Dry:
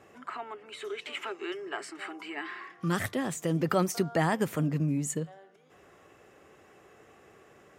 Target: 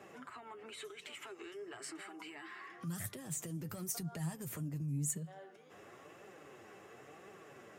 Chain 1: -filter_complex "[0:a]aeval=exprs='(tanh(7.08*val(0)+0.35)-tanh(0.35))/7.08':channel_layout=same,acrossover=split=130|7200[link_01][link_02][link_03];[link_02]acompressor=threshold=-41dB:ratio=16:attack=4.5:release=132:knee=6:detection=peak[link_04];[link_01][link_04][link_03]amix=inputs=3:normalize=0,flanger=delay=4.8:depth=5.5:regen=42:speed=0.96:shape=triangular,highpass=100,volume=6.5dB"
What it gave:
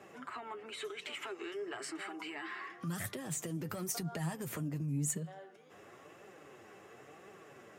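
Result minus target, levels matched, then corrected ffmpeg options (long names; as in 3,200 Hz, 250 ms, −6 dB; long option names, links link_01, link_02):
downward compressor: peak gain reduction −7 dB
-filter_complex "[0:a]aeval=exprs='(tanh(7.08*val(0)+0.35)-tanh(0.35))/7.08':channel_layout=same,acrossover=split=130|7200[link_01][link_02][link_03];[link_02]acompressor=threshold=-48.5dB:ratio=16:attack=4.5:release=132:knee=6:detection=peak[link_04];[link_01][link_04][link_03]amix=inputs=3:normalize=0,flanger=delay=4.8:depth=5.5:regen=42:speed=0.96:shape=triangular,highpass=100,volume=6.5dB"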